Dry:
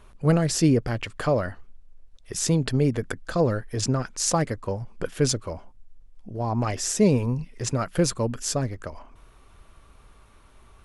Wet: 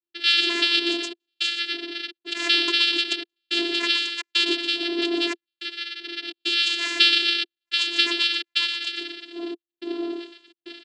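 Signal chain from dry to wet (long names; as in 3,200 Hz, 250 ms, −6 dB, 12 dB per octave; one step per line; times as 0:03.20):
band-splitting scrambler in four parts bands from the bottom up 3412
wind on the microphone 140 Hz −28 dBFS
parametric band 710 Hz −7 dB 0.35 octaves
downward compressor 10 to 1, threshold −20 dBFS, peak gain reduction 11.5 dB
Butterworth low-pass 5,400 Hz
high-shelf EQ 3,500 Hz +6.5 dB
downward expander −39 dBFS
comb filter 4.8 ms, depth 68%
on a send: feedback echo with a band-pass in the loop 121 ms, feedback 42%, band-pass 2,100 Hz, level −6.5 dB
on the sum: gate pattern ".xxxxxxx..xxxxx" 107 BPM −60 dB
channel vocoder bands 8, saw 342 Hz
level +1 dB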